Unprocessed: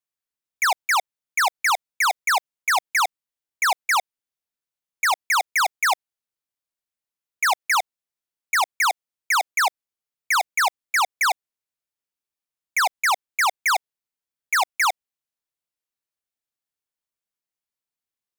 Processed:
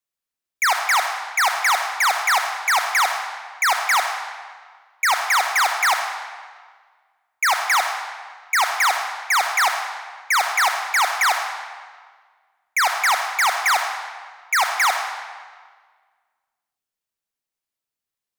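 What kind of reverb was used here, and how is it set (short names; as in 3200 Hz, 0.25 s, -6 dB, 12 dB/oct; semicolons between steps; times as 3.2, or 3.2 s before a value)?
digital reverb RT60 1.6 s, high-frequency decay 0.85×, pre-delay 15 ms, DRR 4 dB; gain +1.5 dB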